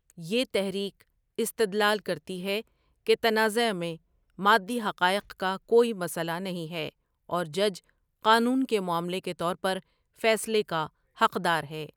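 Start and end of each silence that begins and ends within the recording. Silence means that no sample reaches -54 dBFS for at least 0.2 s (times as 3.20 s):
1.02–1.39 s
2.67–3.07 s
3.97–4.30 s
6.91–7.29 s
7.90–8.22 s
9.83–10.16 s
10.89–11.16 s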